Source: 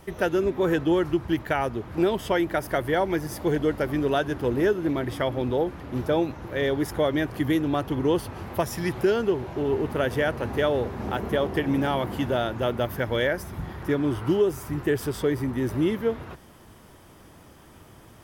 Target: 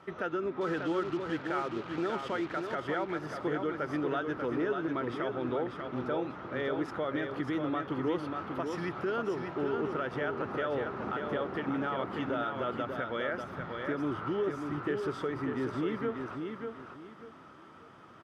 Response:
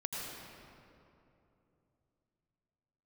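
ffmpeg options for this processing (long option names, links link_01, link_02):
-filter_complex "[0:a]equalizer=frequency=1300:width_type=o:width=0.33:gain=13,alimiter=limit=-18.5dB:level=0:latency=1:release=119,asettb=1/sr,asplit=3[link_01][link_02][link_03];[link_01]atrim=end=0.614[link_04];[link_02]atrim=start=0.61:end=2.75,asetpts=PTS-STARTPTS,afade=type=in:duration=0.004:curve=qsin,afade=type=out:start_time=2.136:duration=0.004:curve=qsin,acrusher=bits=5:mix=0:aa=0.5[link_05];[link_03]atrim=start=2.746[link_06];[link_04][link_05]acrossfade=duration=0.004:curve1=hsin:curve2=qsin[link_07];[link_07][link_06]acrossfade=duration=0.004:curve1=qsin:curve2=hsin,highpass=160,lowpass=3800,aecho=1:1:591|1182|1773|2364:0.531|0.143|0.0387|0.0104,volume=-5.5dB"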